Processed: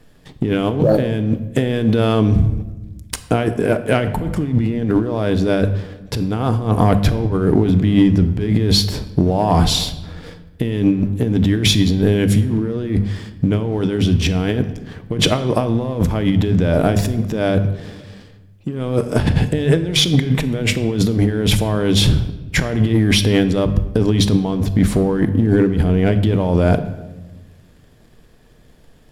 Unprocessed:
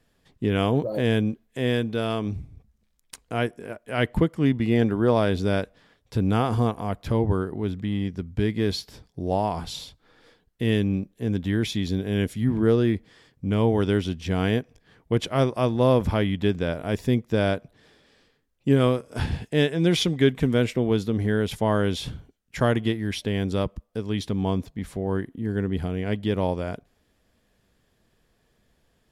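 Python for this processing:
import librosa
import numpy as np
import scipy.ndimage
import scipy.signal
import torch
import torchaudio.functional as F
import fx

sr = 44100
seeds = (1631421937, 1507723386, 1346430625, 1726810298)

y = fx.low_shelf(x, sr, hz=460.0, db=6.5)
y = fx.hum_notches(y, sr, base_hz=50, count=4)
y = fx.over_compress(y, sr, threshold_db=-27.0, ratio=-1.0)
y = fx.leveller(y, sr, passes=1)
y = fx.room_shoebox(y, sr, seeds[0], volume_m3=620.0, walls='mixed', distance_m=0.45)
y = y * librosa.db_to_amplitude(6.5)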